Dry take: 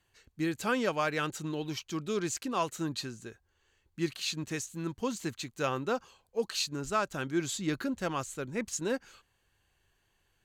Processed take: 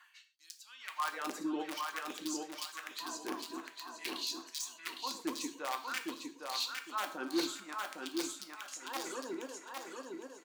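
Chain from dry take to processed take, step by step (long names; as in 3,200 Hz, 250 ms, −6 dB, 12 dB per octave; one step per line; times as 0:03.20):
feedback delay that plays each chunk backwards 128 ms, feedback 67%, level −13.5 dB
reverb reduction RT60 0.85 s
octave-band graphic EQ 125/250/500/1,000/8,000 Hz −6/+12/−7/+12/−3 dB
reversed playback
downward compressor 12 to 1, threshold −45 dBFS, peak gain reduction 27.5 dB
reversed playback
wrap-around overflow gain 38 dB
auto-filter high-pass sine 0.51 Hz 340–5,200 Hz
on a send: repeating echo 808 ms, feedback 25%, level −4 dB
on the sum: reverb whose tail is shaped and stops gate 150 ms falling, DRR 6 dB
level +6.5 dB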